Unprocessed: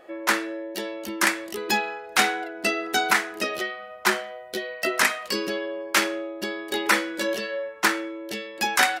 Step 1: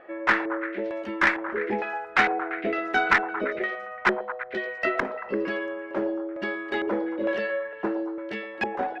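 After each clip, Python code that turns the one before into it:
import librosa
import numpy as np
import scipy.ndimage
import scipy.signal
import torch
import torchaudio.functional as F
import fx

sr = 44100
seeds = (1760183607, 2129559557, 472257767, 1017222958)

y = fx.filter_lfo_lowpass(x, sr, shape='square', hz=1.1, low_hz=520.0, high_hz=1900.0, q=1.5)
y = fx.echo_stepped(y, sr, ms=114, hz=630.0, octaves=0.7, feedback_pct=70, wet_db=-7)
y = fx.tube_stage(y, sr, drive_db=8.0, bias=0.25)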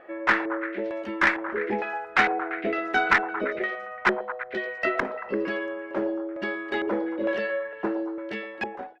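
y = fx.fade_out_tail(x, sr, length_s=0.52)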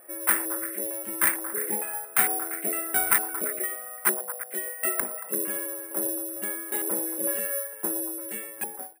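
y = (np.kron(x[::4], np.eye(4)[0]) * 4)[:len(x)]
y = y * librosa.db_to_amplitude(-7.5)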